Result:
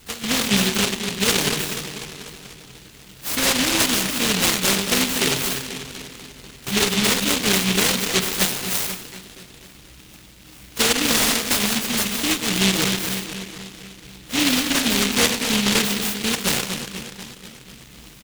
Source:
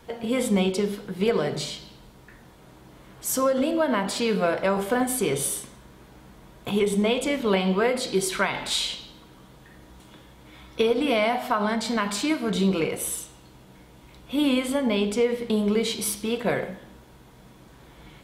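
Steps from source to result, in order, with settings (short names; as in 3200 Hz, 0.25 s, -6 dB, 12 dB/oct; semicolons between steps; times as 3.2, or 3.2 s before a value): harmoniser -7 st -18 dB, +12 st -14 dB; dark delay 0.245 s, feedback 61%, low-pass 600 Hz, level -7 dB; noise-modulated delay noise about 2900 Hz, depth 0.49 ms; gain +2.5 dB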